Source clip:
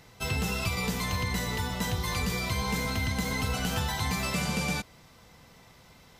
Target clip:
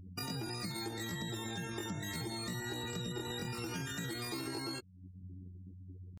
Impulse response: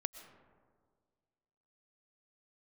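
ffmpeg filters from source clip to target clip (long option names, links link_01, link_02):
-af "aeval=exprs='val(0)+0.00251*(sin(2*PI*50*n/s)+sin(2*PI*2*50*n/s)/2+sin(2*PI*3*50*n/s)/3+sin(2*PI*4*50*n/s)/4+sin(2*PI*5*50*n/s)/5)':channel_layout=same,afftdn=noise_reduction=35:noise_floor=-38,asetrate=80880,aresample=44100,atempo=0.545254,acompressor=threshold=-50dB:ratio=3,afftfilt=real='re*gte(hypot(re,im),0.000562)':imag='im*gte(hypot(re,im),0.000562)':win_size=1024:overlap=0.75,volume=6.5dB"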